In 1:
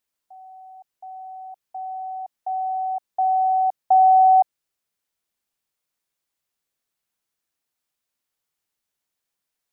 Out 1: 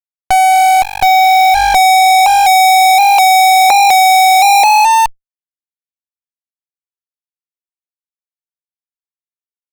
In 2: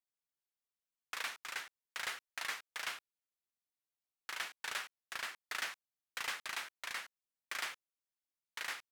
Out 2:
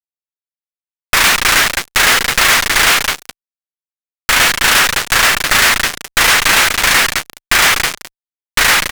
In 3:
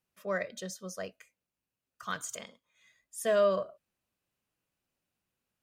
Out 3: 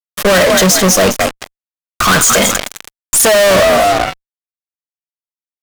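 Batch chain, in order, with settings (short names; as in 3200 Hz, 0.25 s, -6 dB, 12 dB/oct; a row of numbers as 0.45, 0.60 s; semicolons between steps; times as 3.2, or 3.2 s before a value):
frequency-shifting echo 0.212 s, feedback 34%, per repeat +48 Hz, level -14 dB; fuzz box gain 49 dB, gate -54 dBFS; tube stage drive 25 dB, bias 0.65; normalise peaks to -3 dBFS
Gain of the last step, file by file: +18.0, +17.0, +17.0 dB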